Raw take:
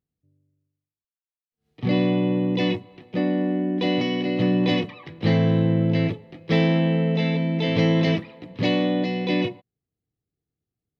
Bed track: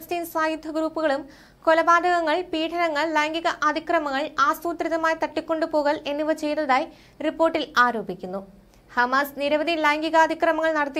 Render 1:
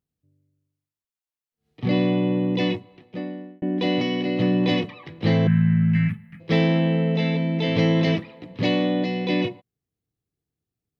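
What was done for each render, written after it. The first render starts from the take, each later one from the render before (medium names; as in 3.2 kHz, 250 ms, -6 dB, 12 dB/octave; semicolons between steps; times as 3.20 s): 2.62–3.62 s: fade out; 5.47–6.40 s: FFT filter 120 Hz 0 dB, 210 Hz +6 dB, 350 Hz -30 dB, 590 Hz -26 dB, 860 Hz -14 dB, 1.6 kHz +7 dB, 2.5 kHz -1 dB, 3.8 kHz -18 dB, 6.1 kHz -11 dB, 9.9 kHz +8 dB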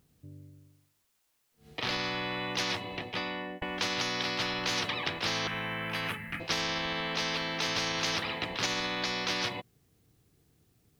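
peak limiter -13.5 dBFS, peak gain reduction 5 dB; spectrum-flattening compressor 10:1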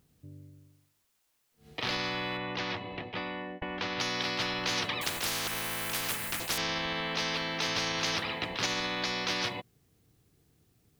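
2.37–4.00 s: distance through air 210 m; 5.01–6.58 s: spectrum-flattening compressor 4:1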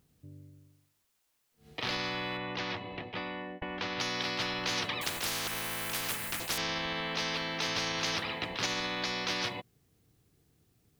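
trim -1.5 dB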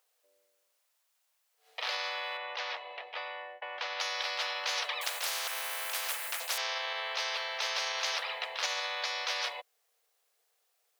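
steep high-pass 510 Hz 48 dB/octave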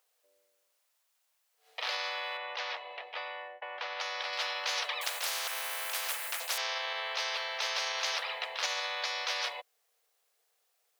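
3.48–4.33 s: low-pass 3.2 kHz 6 dB/octave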